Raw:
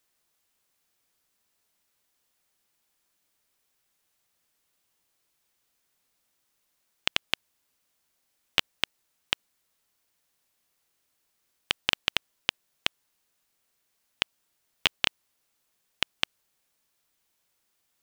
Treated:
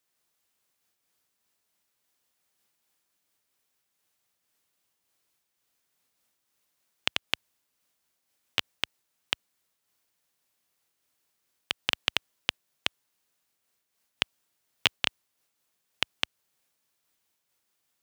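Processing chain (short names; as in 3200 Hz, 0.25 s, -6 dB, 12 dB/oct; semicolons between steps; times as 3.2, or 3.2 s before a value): HPF 62 Hz; noise-modulated level, depth 55%; gain +1 dB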